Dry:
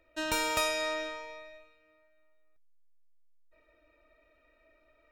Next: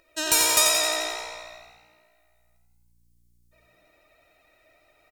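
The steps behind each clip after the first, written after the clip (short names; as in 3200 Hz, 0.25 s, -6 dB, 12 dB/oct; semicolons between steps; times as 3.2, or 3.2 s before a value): tone controls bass -6 dB, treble +15 dB; frequency-shifting echo 88 ms, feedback 56%, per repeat +59 Hz, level -6 dB; vibrato 13 Hz 35 cents; gain +3 dB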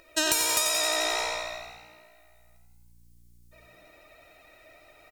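compressor 12:1, threshold -29 dBFS, peak gain reduction 14.5 dB; gain +7 dB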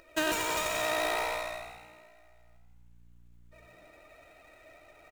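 median filter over 9 samples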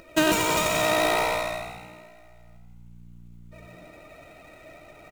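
bell 170 Hz +10.5 dB 1.5 oct; notch 1700 Hz, Q 8; gain +7 dB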